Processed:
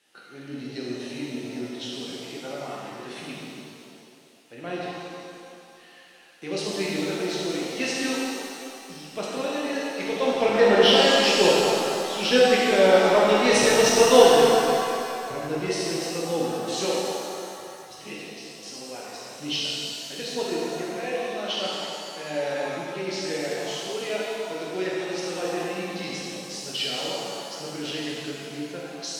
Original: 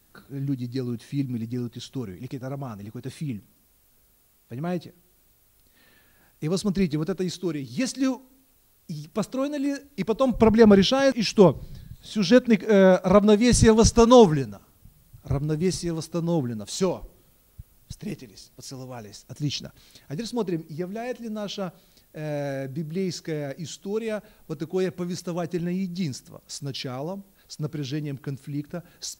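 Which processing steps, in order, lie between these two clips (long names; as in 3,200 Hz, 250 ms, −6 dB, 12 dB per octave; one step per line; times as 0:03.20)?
loudspeaker in its box 400–9,200 Hz, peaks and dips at 1,100 Hz −6 dB, 1,900 Hz +4 dB, 2,900 Hz +9 dB, 7,300 Hz −7 dB
in parallel at −9 dB: soft clipping −23.5 dBFS, distortion −5 dB
on the sum: reverb with rising layers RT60 2.5 s, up +7 semitones, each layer −8 dB, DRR −6 dB
level −4.5 dB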